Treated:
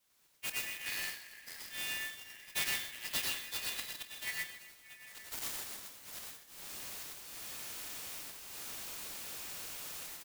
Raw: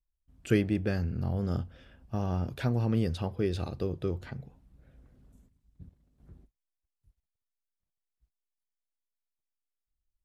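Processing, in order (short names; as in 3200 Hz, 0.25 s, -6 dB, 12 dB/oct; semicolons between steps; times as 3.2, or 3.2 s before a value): frequency quantiser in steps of 2 st; recorder AGC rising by 29 dB/s; spectral gate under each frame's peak -25 dB strong; in parallel at -3 dB: compressor, threshold -42 dBFS, peak gain reduction 19.5 dB; on the sum: auto swell 0.341 s; soft clip -33.5 dBFS, distortion -6 dB; brick-wall FIR high-pass 1600 Hz; doubler 27 ms -12 dB; feedback echo 0.272 s, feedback 43%, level -19.5 dB; plate-style reverb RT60 0.51 s, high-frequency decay 0.95×, pre-delay 85 ms, DRR -1.5 dB; clock jitter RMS 0.04 ms; gain +6 dB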